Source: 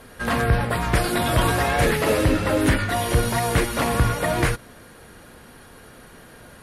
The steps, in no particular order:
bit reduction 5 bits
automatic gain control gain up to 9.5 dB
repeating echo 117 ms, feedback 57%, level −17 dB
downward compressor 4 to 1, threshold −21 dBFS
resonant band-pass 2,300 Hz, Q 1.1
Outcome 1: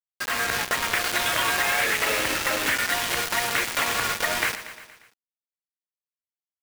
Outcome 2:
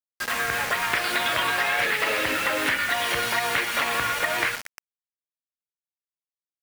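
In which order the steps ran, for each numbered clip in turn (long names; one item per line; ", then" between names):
resonant band-pass, then bit reduction, then automatic gain control, then repeating echo, then downward compressor
resonant band-pass, then automatic gain control, then repeating echo, then bit reduction, then downward compressor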